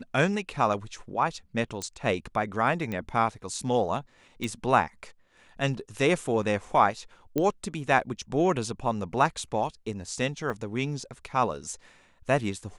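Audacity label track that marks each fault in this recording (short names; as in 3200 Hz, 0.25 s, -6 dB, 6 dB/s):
1.820000	1.820000	pop -19 dBFS
2.920000	2.920000	pop -20 dBFS
4.440000	4.440000	pop
7.380000	7.380000	pop -14 dBFS
10.500000	10.500000	gap 3.1 ms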